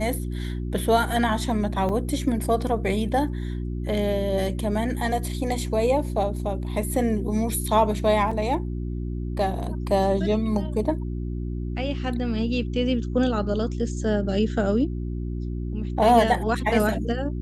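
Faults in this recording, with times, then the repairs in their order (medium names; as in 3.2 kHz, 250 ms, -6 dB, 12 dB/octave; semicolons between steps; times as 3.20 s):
hum 60 Hz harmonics 6 -29 dBFS
1.89 s: dropout 4.5 ms
8.31 s: dropout 4.7 ms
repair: de-hum 60 Hz, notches 6; interpolate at 1.89 s, 4.5 ms; interpolate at 8.31 s, 4.7 ms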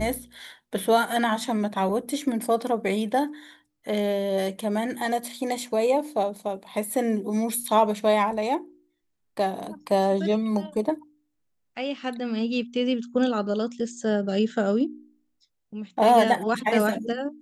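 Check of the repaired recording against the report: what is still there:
nothing left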